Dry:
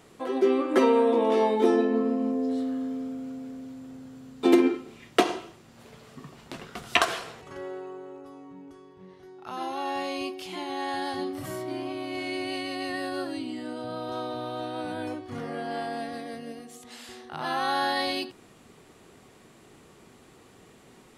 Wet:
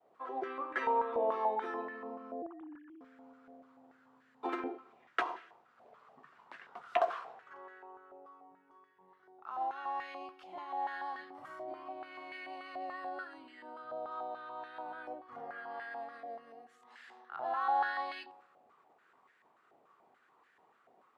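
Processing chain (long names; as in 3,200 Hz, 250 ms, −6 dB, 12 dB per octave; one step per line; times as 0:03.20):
0:02.42–0:03.01: three sine waves on the formant tracks
downward expander −51 dBFS
on a send at −23 dB: convolution reverb RT60 1.3 s, pre-delay 3 ms
on the sum: band-pass on a step sequencer 6.9 Hz 690–1,700 Hz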